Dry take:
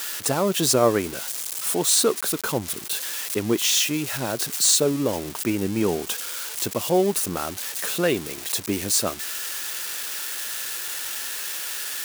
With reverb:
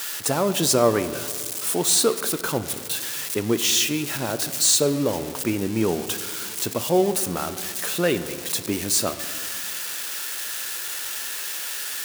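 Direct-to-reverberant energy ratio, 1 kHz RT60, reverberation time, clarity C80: 10.5 dB, 2.0 s, 2.1 s, 13.0 dB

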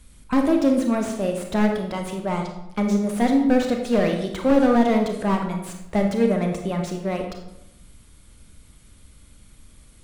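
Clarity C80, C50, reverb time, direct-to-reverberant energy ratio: 8.0 dB, 5.5 dB, 0.90 s, 3.0 dB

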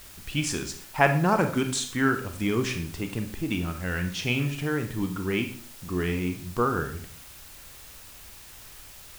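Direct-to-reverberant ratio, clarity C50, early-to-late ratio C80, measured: 6.0 dB, 9.5 dB, 13.5 dB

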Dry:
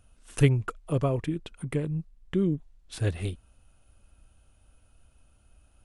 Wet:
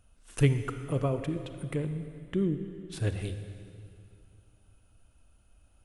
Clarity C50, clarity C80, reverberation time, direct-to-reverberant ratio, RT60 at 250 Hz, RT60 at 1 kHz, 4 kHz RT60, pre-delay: 9.5 dB, 10.0 dB, 2.4 s, 9.0 dB, 3.0 s, 2.3 s, 2.2 s, 33 ms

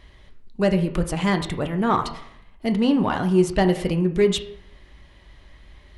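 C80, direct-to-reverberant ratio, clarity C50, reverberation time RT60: 14.5 dB, 6.0 dB, 12.0 dB, 0.75 s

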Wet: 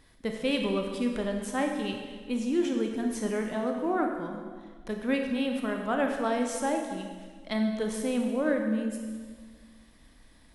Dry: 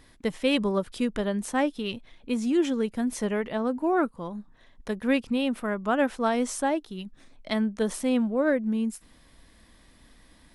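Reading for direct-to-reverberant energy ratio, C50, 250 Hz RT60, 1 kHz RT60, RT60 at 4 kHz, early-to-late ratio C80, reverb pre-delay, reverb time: 2.5 dB, 4.0 dB, 1.8 s, 1.5 s, 1.5 s, 5.5 dB, 24 ms, 1.6 s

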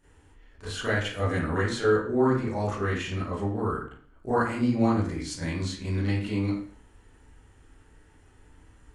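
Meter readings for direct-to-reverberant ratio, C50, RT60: -11.5 dB, 1.0 dB, 0.50 s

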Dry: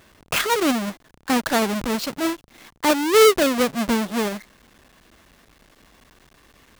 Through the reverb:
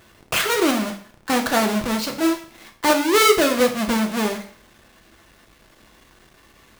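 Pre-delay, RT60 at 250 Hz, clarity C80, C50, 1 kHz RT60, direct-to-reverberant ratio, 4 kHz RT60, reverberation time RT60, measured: 3 ms, 0.50 s, 14.0 dB, 10.5 dB, 0.55 s, 3.0 dB, 0.50 s, 0.50 s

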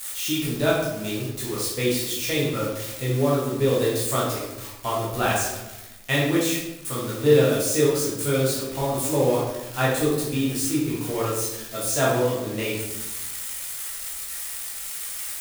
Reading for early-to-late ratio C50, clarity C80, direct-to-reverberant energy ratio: 1.5 dB, 5.0 dB, -7.0 dB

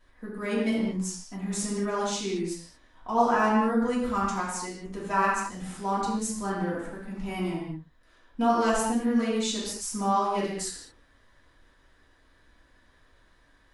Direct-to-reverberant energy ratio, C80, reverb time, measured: -7.0 dB, 3.0 dB, no single decay rate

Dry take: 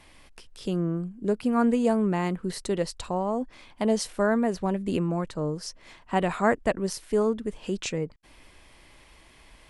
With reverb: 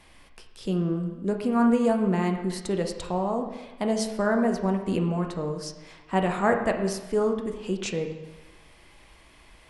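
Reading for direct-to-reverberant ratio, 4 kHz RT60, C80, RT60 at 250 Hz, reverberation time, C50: 3.5 dB, 1.0 s, 8.5 dB, 1.1 s, 1.1 s, 7.0 dB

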